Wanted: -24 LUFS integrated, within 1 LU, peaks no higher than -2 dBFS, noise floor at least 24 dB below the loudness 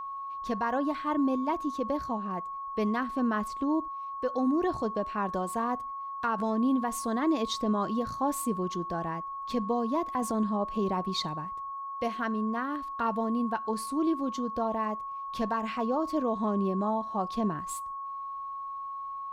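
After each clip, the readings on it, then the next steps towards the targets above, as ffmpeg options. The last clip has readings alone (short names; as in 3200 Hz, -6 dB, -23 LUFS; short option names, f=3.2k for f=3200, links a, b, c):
steady tone 1100 Hz; tone level -35 dBFS; loudness -31.0 LUFS; peak -18.5 dBFS; loudness target -24.0 LUFS
-> -af "bandreject=f=1.1k:w=30"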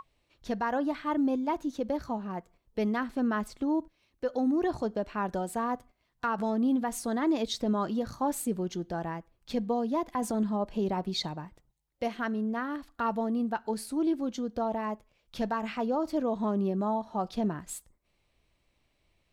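steady tone none; loudness -31.5 LUFS; peak -19.0 dBFS; loudness target -24.0 LUFS
-> -af "volume=7.5dB"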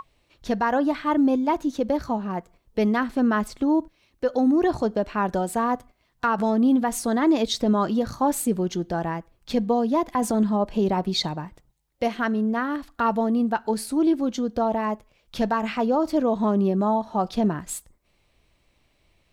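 loudness -24.0 LUFS; peak -11.5 dBFS; noise floor -67 dBFS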